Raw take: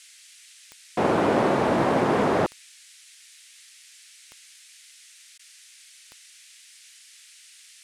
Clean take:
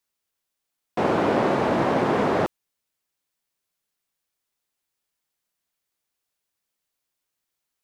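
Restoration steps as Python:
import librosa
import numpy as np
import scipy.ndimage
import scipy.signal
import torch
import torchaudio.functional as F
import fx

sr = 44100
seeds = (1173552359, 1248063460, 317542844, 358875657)

y = fx.fix_declick_ar(x, sr, threshold=10.0)
y = fx.fix_interpolate(y, sr, at_s=(5.38,), length_ms=11.0)
y = fx.noise_reduce(y, sr, print_start_s=2.72, print_end_s=3.22, reduce_db=30.0)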